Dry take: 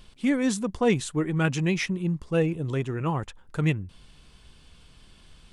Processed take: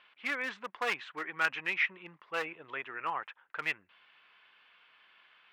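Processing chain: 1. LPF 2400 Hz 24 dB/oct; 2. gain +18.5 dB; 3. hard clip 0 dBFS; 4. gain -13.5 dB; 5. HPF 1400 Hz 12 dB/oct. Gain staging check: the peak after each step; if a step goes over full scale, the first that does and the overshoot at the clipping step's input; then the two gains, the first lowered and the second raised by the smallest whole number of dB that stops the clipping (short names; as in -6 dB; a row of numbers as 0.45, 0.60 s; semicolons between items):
-11.0, +7.5, 0.0, -13.5, -14.5 dBFS; step 2, 7.5 dB; step 2 +10.5 dB, step 4 -5.5 dB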